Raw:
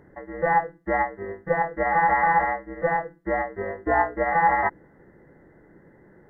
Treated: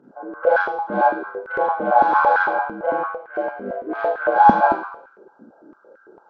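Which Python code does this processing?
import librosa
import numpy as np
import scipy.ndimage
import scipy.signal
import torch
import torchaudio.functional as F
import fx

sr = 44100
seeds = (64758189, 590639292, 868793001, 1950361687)

y = fx.freq_compress(x, sr, knee_hz=1000.0, ratio=1.5)
y = fx.notch(y, sr, hz=1600.0, q=30.0, at=(1.42, 2.31))
y = fx.transient(y, sr, attack_db=-9, sustain_db=-5, at=(2.87, 4.19))
y = fx.cheby_harmonics(y, sr, harmonics=(6,), levels_db=(-30,), full_scale_db=-9.5)
y = fx.spec_box(y, sr, start_s=3.02, length_s=1.02, low_hz=750.0, high_hz=1600.0, gain_db=-7)
y = fx.rev_schroeder(y, sr, rt60_s=0.66, comb_ms=28, drr_db=-6.0)
y = fx.filter_held_highpass(y, sr, hz=8.9, low_hz=230.0, high_hz=1500.0)
y = y * librosa.db_to_amplitude(-6.0)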